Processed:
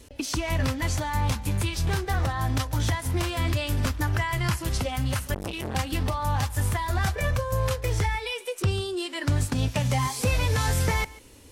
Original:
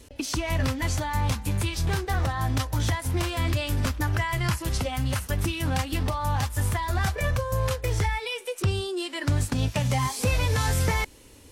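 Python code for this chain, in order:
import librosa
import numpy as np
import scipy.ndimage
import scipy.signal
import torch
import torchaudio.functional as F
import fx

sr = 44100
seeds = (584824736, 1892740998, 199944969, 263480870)

y = x + 10.0 ** (-20.5 / 20.0) * np.pad(x, (int(143 * sr / 1000.0), 0))[:len(x)]
y = fx.transformer_sat(y, sr, knee_hz=800.0, at=(5.34, 5.75))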